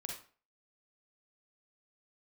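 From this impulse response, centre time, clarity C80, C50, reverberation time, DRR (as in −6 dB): 32 ms, 9.5 dB, 2.5 dB, 0.40 s, 0.5 dB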